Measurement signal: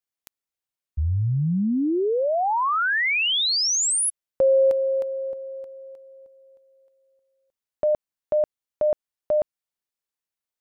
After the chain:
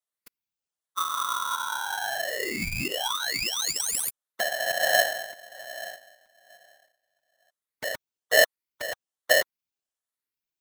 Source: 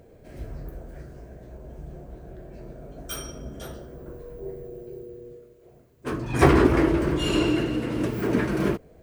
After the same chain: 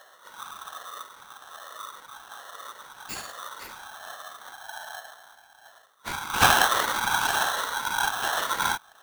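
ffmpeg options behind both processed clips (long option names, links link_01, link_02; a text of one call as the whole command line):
ffmpeg -i in.wav -af "afftfilt=real='re*pow(10,16/40*sin(2*PI*(0.51*log(max(b,1)*sr/1024/100)/log(2)-(1.2)*(pts-256)/sr)))':imag='im*pow(10,16/40*sin(2*PI*(0.51*log(max(b,1)*sr/1024/100)/log(2)-(1.2)*(pts-256)/sr)))':win_size=1024:overlap=0.75,afftfilt=real='hypot(re,im)*cos(2*PI*random(0))':imag='hypot(re,im)*sin(2*PI*random(1))':win_size=512:overlap=0.75,aeval=exprs='val(0)*sgn(sin(2*PI*1200*n/s))':channel_layout=same,volume=1dB" out.wav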